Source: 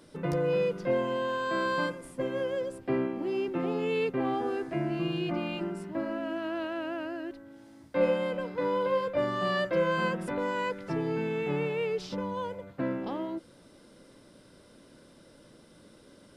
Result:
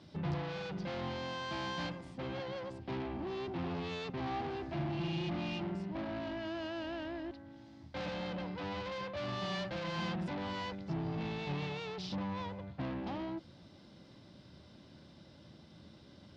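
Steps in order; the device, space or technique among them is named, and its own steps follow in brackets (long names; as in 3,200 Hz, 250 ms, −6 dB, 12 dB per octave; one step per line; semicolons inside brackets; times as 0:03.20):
0:10.75–0:11.21: parametric band 1,500 Hz −9 dB 2.1 octaves
guitar amplifier (tube saturation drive 36 dB, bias 0.55; bass and treble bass +9 dB, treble +13 dB; loudspeaker in its box 76–4,300 Hz, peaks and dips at 80 Hz +6 dB, 260 Hz −4 dB, 470 Hz −8 dB, 780 Hz +5 dB, 1,400 Hz −3 dB)
level −1 dB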